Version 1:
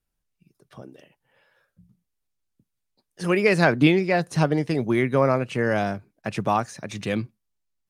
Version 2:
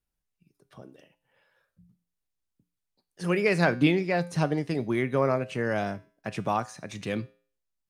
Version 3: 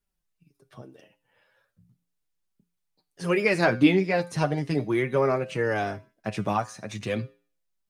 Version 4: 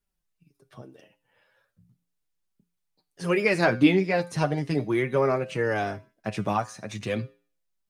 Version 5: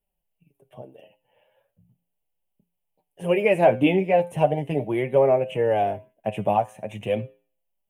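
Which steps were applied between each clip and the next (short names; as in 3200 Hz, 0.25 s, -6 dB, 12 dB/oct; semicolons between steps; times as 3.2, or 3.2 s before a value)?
resonator 58 Hz, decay 0.45 s, harmonics odd, mix 50%
flange 0.38 Hz, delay 4.8 ms, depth 5.6 ms, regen +19%; gain +5.5 dB
nothing audible
EQ curve 220 Hz 0 dB, 320 Hz -2 dB, 590 Hz +9 dB, 860 Hz +6 dB, 1300 Hz -13 dB, 3000 Hz +4 dB, 4500 Hz -28 dB, 7500 Hz -8 dB, 12000 Hz +3 dB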